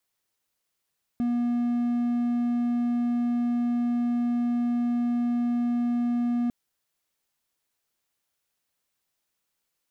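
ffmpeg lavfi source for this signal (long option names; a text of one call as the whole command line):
ffmpeg -f lavfi -i "aevalsrc='0.0944*(1-4*abs(mod(240*t+0.25,1)-0.5))':duration=5.3:sample_rate=44100" out.wav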